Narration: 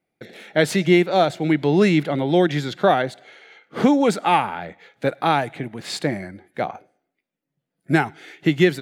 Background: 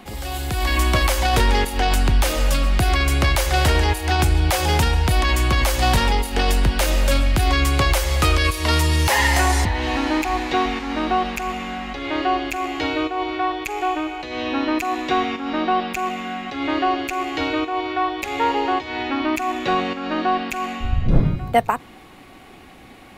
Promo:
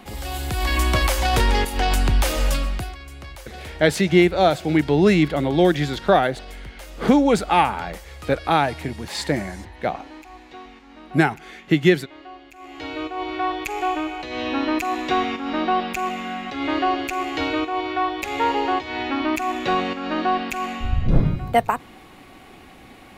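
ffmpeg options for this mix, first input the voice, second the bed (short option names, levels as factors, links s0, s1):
-filter_complex "[0:a]adelay=3250,volume=1.06[s0];[1:a]volume=7.94,afade=t=out:st=2.47:d=0.48:silence=0.112202,afade=t=in:st=12.55:d=0.98:silence=0.105925[s1];[s0][s1]amix=inputs=2:normalize=0"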